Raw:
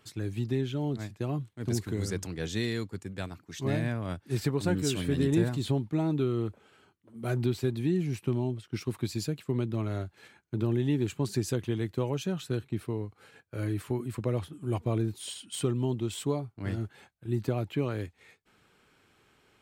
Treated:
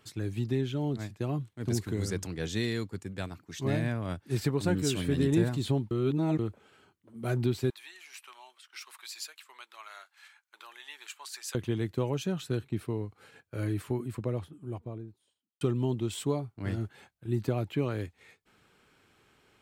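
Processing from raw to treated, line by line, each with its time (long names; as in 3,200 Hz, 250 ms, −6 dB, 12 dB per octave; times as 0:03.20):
0:05.91–0:06.39: reverse
0:07.70–0:11.55: high-pass filter 1,000 Hz 24 dB per octave
0:13.66–0:15.61: fade out and dull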